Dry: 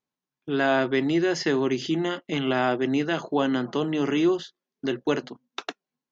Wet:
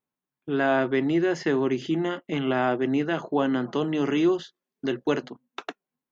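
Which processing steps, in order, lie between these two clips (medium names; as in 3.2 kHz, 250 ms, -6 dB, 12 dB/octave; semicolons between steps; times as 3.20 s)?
peaking EQ 5 kHz -10 dB 1.3 oct, from 3.62 s -3.5 dB, from 5.28 s -9.5 dB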